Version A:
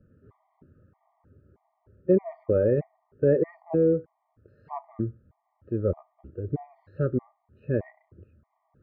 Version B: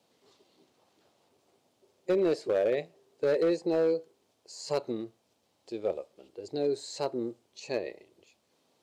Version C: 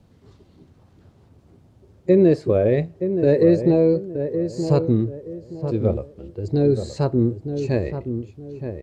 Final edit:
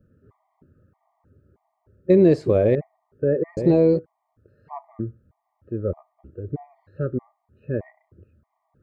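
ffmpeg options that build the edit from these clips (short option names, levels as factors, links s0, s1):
-filter_complex "[2:a]asplit=2[s0][s1];[0:a]asplit=3[s2][s3][s4];[s2]atrim=end=2.102[s5];[s0]atrim=start=2.098:end=2.752[s6];[s3]atrim=start=2.748:end=3.572[s7];[s1]atrim=start=3.568:end=3.992[s8];[s4]atrim=start=3.988[s9];[s5][s6]acrossfade=d=0.004:c1=hsin:c2=hsin[s10];[s10][s7]acrossfade=d=0.004:c1=hsin:c2=hsin[s11];[s11][s8]acrossfade=d=0.004:c1=hsin:c2=hsin[s12];[s12][s9]acrossfade=d=0.004:c1=hsin:c2=hsin"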